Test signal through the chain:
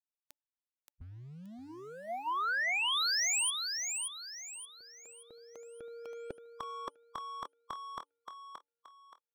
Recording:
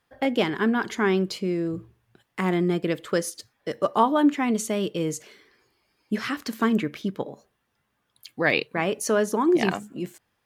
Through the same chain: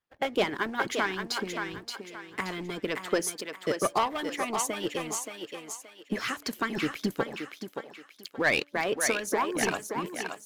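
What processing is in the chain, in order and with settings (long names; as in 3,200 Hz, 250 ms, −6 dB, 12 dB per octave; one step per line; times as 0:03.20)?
leveller curve on the samples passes 2
hum removal 288.5 Hz, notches 3
harmonic and percussive parts rebalanced harmonic −16 dB
on a send: feedback echo with a high-pass in the loop 575 ms, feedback 36%, high-pass 370 Hz, level −5 dB
on the sum: level −6 dB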